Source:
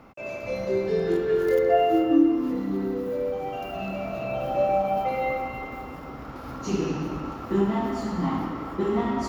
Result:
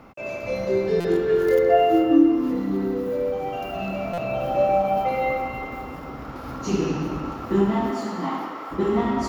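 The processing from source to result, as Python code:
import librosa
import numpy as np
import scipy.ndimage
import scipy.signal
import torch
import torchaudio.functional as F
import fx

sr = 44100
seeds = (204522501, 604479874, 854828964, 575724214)

y = fx.highpass(x, sr, hz=fx.line((7.9, 180.0), (8.7, 580.0)), slope=12, at=(7.9, 8.7), fade=0.02)
y = fx.buffer_glitch(y, sr, at_s=(1.0, 4.13), block=256, repeats=7)
y = y * 10.0 ** (3.0 / 20.0)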